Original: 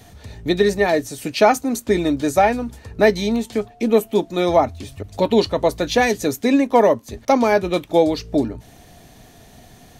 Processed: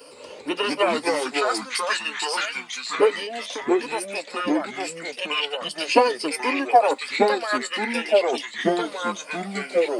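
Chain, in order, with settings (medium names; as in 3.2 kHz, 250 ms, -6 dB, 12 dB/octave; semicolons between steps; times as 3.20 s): LFO high-pass saw up 0.34 Hz 550–4500 Hz; in parallel at +1 dB: compression, threshold -32 dBFS, peak gain reduction 25 dB; on the sum: rippled EQ curve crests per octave 1.1, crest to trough 17 dB; formant shift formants -5 st; ever faster or slower copies 112 ms, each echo -3 st, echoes 2; trim -7.5 dB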